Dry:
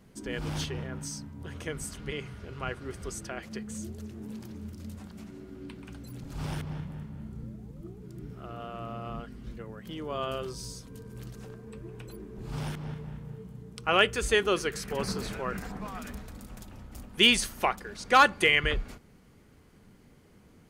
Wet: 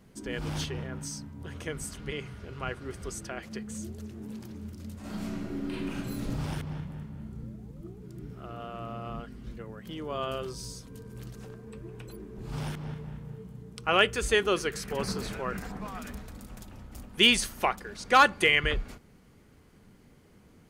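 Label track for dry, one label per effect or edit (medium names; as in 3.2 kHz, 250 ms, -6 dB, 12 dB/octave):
5.000000	6.300000	reverb throw, RT60 1 s, DRR -10.5 dB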